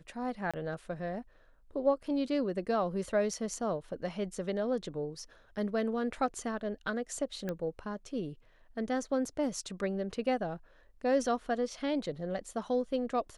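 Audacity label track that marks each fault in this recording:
0.510000	0.540000	dropout 26 ms
7.490000	7.490000	pop -22 dBFS

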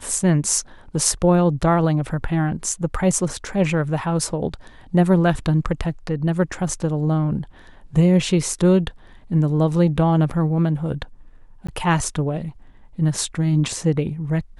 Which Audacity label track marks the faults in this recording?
11.670000	11.690000	dropout 15 ms

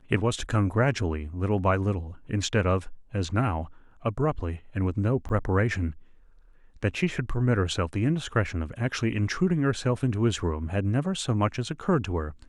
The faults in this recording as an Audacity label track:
5.290000	5.300000	dropout 7.6 ms

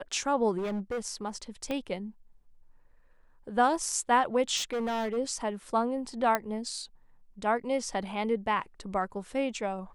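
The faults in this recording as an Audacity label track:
0.570000	1.000000	clipped -29.5 dBFS
1.710000	1.710000	pop -20 dBFS
4.560000	5.180000	clipped -28 dBFS
6.350000	6.350000	pop -12 dBFS

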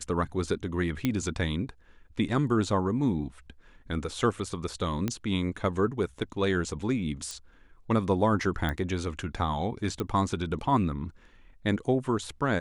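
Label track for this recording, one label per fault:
1.050000	1.050000	pop -13 dBFS
5.080000	5.080000	pop -15 dBFS
7.310000	7.310000	pop
8.690000	8.690000	pop -18 dBFS
10.000000	10.000000	pop -18 dBFS

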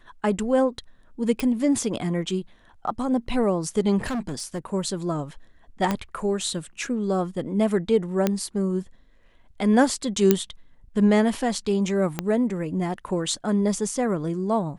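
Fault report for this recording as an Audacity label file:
1.400000	1.400000	pop
4.060000	4.650000	clipped -24.5 dBFS
5.910000	5.910000	pop -10 dBFS
8.270000	8.270000	pop -8 dBFS
10.310000	10.310000	pop -3 dBFS
12.190000	12.190000	pop -10 dBFS

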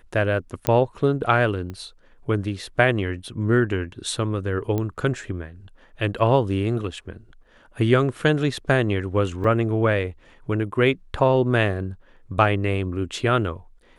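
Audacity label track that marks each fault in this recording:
0.670000	0.670000	pop -5 dBFS
1.700000	1.700000	pop -22 dBFS
4.780000	4.780000	pop -14 dBFS
9.440000	9.440000	dropout 4 ms

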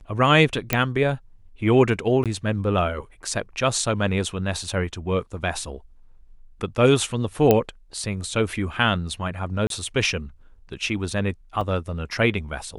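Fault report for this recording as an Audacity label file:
0.730000	0.730000	pop -3 dBFS
2.240000	2.260000	dropout 17 ms
4.630000	4.630000	dropout 2.6 ms
7.510000	7.510000	pop -4 dBFS
9.670000	9.700000	dropout 32 ms
11.610000	11.610000	dropout 3 ms

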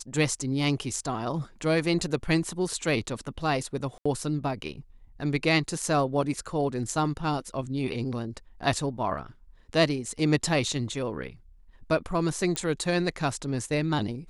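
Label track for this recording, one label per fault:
3.980000	4.050000	dropout 75 ms
12.560000	12.560000	pop -13 dBFS

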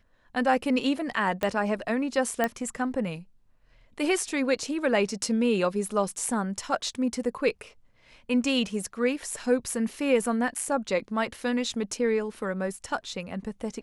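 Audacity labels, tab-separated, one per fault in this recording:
1.430000	1.430000	pop -13 dBFS
2.440000	2.440000	pop -12 dBFS

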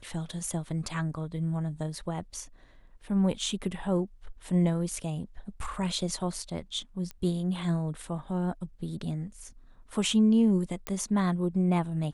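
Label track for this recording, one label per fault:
7.110000	7.110000	pop -25 dBFS
10.870000	10.870000	pop -16 dBFS

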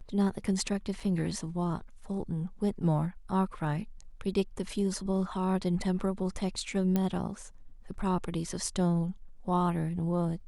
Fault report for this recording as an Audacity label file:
1.000000	1.000000	dropout 3.8 ms
6.960000	6.960000	pop -16 dBFS

